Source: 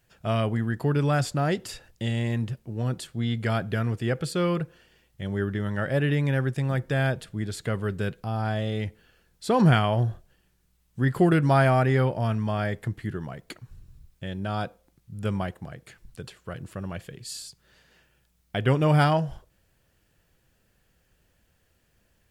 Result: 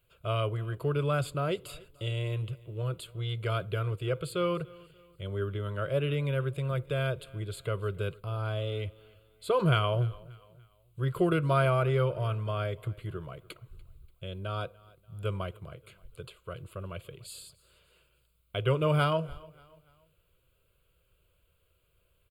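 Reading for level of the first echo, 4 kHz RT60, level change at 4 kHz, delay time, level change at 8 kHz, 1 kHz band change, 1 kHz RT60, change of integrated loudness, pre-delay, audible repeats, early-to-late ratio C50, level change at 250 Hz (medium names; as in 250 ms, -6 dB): -23.0 dB, no reverb, -3.0 dB, 291 ms, no reading, -6.0 dB, no reverb, -5.5 dB, no reverb, 2, no reverb, -9.5 dB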